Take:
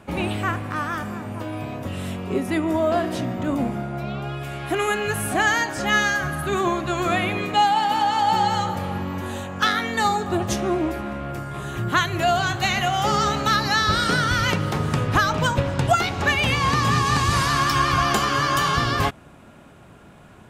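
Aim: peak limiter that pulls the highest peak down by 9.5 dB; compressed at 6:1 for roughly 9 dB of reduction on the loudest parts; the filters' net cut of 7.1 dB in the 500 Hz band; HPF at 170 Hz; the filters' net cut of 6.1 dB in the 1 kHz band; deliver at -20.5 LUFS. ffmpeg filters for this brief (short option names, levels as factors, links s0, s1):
-af "highpass=170,equalizer=f=500:t=o:g=-8.5,equalizer=f=1000:t=o:g=-5.5,acompressor=threshold=0.0398:ratio=6,volume=4.73,alimiter=limit=0.251:level=0:latency=1"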